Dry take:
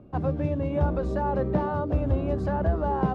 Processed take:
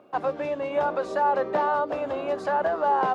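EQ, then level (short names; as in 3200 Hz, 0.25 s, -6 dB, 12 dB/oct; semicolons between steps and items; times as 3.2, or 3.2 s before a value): HPF 680 Hz 12 dB/oct; +8.5 dB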